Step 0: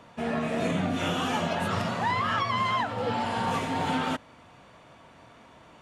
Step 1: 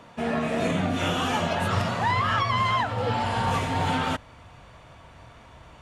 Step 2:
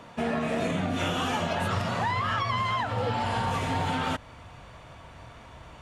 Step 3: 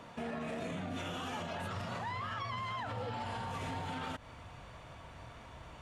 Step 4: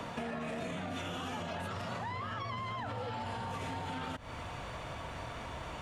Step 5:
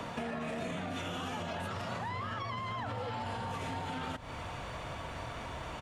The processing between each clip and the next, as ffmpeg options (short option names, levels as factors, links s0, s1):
-af "asubboost=boost=6.5:cutoff=92,volume=1.41"
-af "acompressor=threshold=0.0501:ratio=6,volume=1.19"
-af "alimiter=level_in=1.5:limit=0.0631:level=0:latency=1:release=105,volume=0.668,volume=0.631"
-filter_complex "[0:a]acrossover=split=240|560[s0][s1][s2];[s0]acompressor=threshold=0.00158:ratio=4[s3];[s1]acompressor=threshold=0.00112:ratio=4[s4];[s2]acompressor=threshold=0.00224:ratio=4[s5];[s3][s4][s5]amix=inputs=3:normalize=0,volume=3.55"
-af "aecho=1:1:418:0.158,volume=1.12"